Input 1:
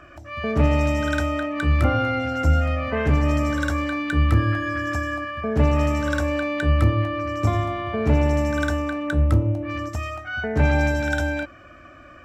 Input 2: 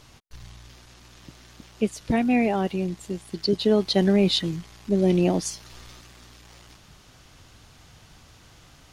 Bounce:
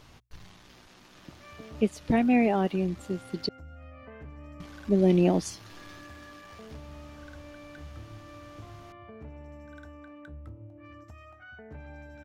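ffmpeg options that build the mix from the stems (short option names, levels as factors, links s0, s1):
-filter_complex "[0:a]acompressor=threshold=0.02:ratio=2.5,adelay=1150,volume=0.2[s0];[1:a]bandreject=f=60:t=h:w=6,bandreject=f=120:t=h:w=6,volume=0.891,asplit=3[s1][s2][s3];[s1]atrim=end=3.49,asetpts=PTS-STARTPTS,afade=t=out:st=3.486:d=0.004:c=hsin[s4];[s2]atrim=start=3.49:end=4.6,asetpts=PTS-STARTPTS,volume=0[s5];[s3]atrim=start=4.6,asetpts=PTS-STARTPTS,afade=t=in:d=0.004:c=hsin[s6];[s4][s5][s6]concat=n=3:v=0:a=1,asplit=2[s7][s8];[s8]apad=whole_len=590628[s9];[s0][s9]sidechaincompress=threshold=0.0447:ratio=8:attack=20:release=847[s10];[s10][s7]amix=inputs=2:normalize=0,equalizer=f=8400:w=0.49:g=-7"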